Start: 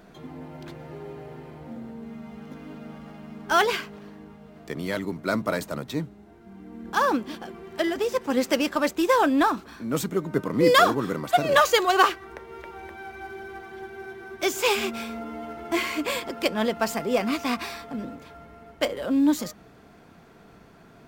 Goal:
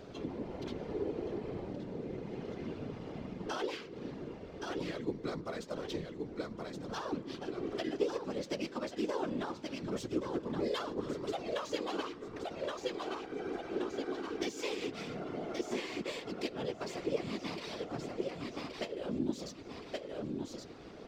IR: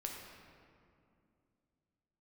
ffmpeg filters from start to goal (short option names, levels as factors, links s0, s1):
-filter_complex "[0:a]equalizer=f=5400:w=0.64:g=8.5,aecho=1:1:1123|2246|3369:0.316|0.0822|0.0214,acompressor=threshold=0.0126:ratio=4,equalizer=f=400:t=o:w=0.67:g=10,equalizer=f=1600:t=o:w=0.67:g=-3,equalizer=f=10000:t=o:w=0.67:g=-5,adynamicsmooth=sensitivity=7:basefreq=7900,asplit=2[s0][s1];[1:a]atrim=start_sample=2205,afade=t=out:st=0.32:d=0.01,atrim=end_sample=14553,lowshelf=f=460:g=4[s2];[s1][s2]afir=irnorm=-1:irlink=0,volume=0.188[s3];[s0][s3]amix=inputs=2:normalize=0,asplit=2[s4][s5];[s5]asetrate=37084,aresample=44100,atempo=1.18921,volume=0.562[s6];[s4][s6]amix=inputs=2:normalize=0,afftfilt=real='hypot(re,im)*cos(2*PI*random(0))':imag='hypot(re,im)*sin(2*PI*random(1))':win_size=512:overlap=0.75,volume=1.12"